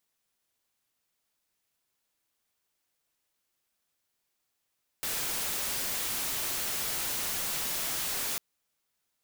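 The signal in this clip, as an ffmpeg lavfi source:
ffmpeg -f lavfi -i "anoisesrc=color=white:amplitude=0.0411:duration=3.35:sample_rate=44100:seed=1" out.wav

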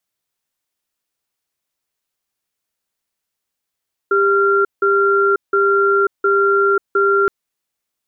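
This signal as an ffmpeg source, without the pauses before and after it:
ffmpeg -f lavfi -i "aevalsrc='0.2*(sin(2*PI*397*t)+sin(2*PI*1380*t))*clip(min(mod(t,0.71),0.54-mod(t,0.71))/0.005,0,1)':duration=3.17:sample_rate=44100" out.wav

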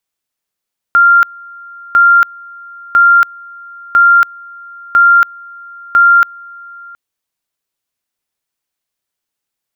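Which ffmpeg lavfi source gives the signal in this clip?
ffmpeg -f lavfi -i "aevalsrc='pow(10,(-3.5-26*gte(mod(t,1),0.28))/20)*sin(2*PI*1390*t)':duration=6:sample_rate=44100" out.wav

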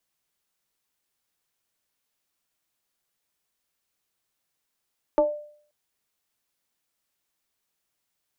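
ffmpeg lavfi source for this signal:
ffmpeg -f lavfi -i "aevalsrc='0.211*pow(10,-3*t/0.55)*sin(2*PI*595*t+0.99*pow(10,-3*t/0.3)*sin(2*PI*0.48*595*t))':duration=0.53:sample_rate=44100" out.wav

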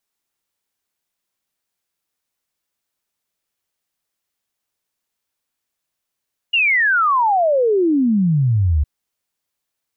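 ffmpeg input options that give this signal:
ffmpeg -f lavfi -i "aevalsrc='0.237*clip(min(t,2.31-t)/0.01,0,1)*sin(2*PI*2900*2.31/log(69/2900)*(exp(log(69/2900)*t/2.31)-1))':duration=2.31:sample_rate=44100" out.wav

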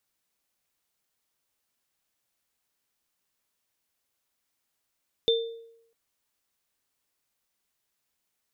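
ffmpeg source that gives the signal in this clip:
ffmpeg -f lavfi -i "aevalsrc='0.112*pow(10,-3*t/0.78)*sin(2*PI*459*t)+0.0944*pow(10,-3*t/0.41)*sin(2*PI*3570*t)':duration=0.65:sample_rate=44100" out.wav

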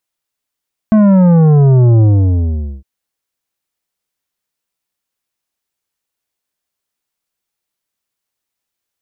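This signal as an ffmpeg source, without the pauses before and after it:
ffmpeg -f lavfi -i "aevalsrc='0.501*clip((1.91-t)/0.82,0,1)*tanh(3.16*sin(2*PI*220*1.91/log(65/220)*(exp(log(65/220)*t/1.91)-1)))/tanh(3.16)':duration=1.91:sample_rate=44100" out.wav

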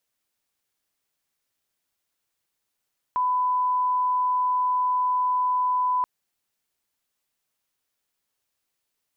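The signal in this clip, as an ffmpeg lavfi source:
ffmpeg -f lavfi -i "sine=frequency=1000:duration=2.88:sample_rate=44100,volume=-1.94dB" out.wav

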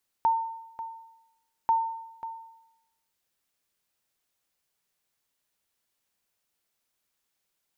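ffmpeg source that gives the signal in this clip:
ffmpeg -f lavfi -i "aevalsrc='0.141*(sin(2*PI*906*mod(t,1.44))*exp(-6.91*mod(t,1.44)/0.88)+0.211*sin(2*PI*906*max(mod(t,1.44)-0.54,0))*exp(-6.91*max(mod(t,1.44)-0.54,0)/0.88))':duration=2.88:sample_rate=44100" out.wav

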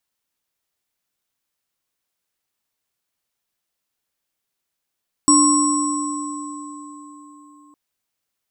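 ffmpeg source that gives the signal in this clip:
ffmpeg -f lavfi -i "aevalsrc='0.224*pow(10,-3*t/4.11)*sin(2*PI*295*t)+0.141*pow(10,-3*t/4.3)*sin(2*PI*1070*t)+0.075*pow(10,-3*t/1.88)*sin(2*PI*5580*t)+0.251*pow(10,-3*t/2.83)*sin(2*PI*7920*t)':duration=2.46:sample_rate=44100" out.wav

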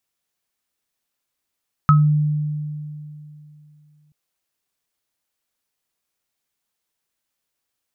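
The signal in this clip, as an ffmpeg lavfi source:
ffmpeg -f lavfi -i "aevalsrc='0.355*pow(10,-3*t/2.88)*sin(2*PI*150*t)+0.355*pow(10,-3*t/0.21)*sin(2*PI*1280*t)':duration=2.23:sample_rate=44100" out.wav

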